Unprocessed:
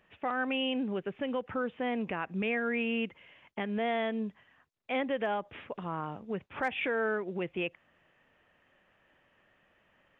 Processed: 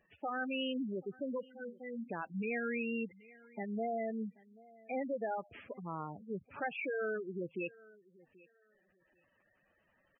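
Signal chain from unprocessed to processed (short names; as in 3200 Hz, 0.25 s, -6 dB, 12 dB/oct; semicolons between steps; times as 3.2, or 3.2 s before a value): 1.45–2.1 metallic resonator 230 Hz, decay 0.24 s, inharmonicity 0.03; feedback echo 0.782 s, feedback 21%, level -23 dB; spectral gate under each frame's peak -10 dB strong; gain -4.5 dB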